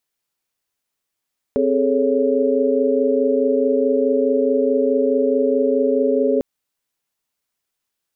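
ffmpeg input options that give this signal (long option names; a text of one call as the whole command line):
ffmpeg -f lavfi -i "aevalsrc='0.1*(sin(2*PI*261.63*t)+sin(2*PI*415.3*t)+sin(2*PI*440*t)+sin(2*PI*554.37*t))':duration=4.85:sample_rate=44100" out.wav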